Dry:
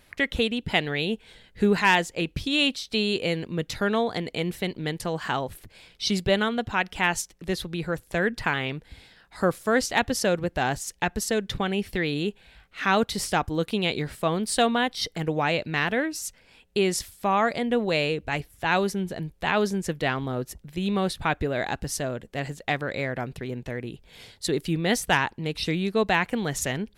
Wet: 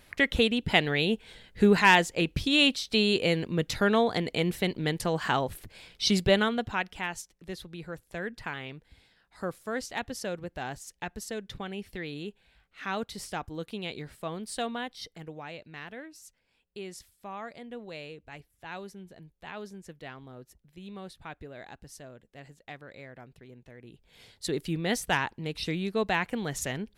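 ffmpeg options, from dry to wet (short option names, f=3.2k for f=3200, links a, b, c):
-af "volume=13dB,afade=t=out:st=6.23:d=0.85:silence=0.266073,afade=t=out:st=14.77:d=0.66:silence=0.473151,afade=t=in:st=23.77:d=0.72:silence=0.237137"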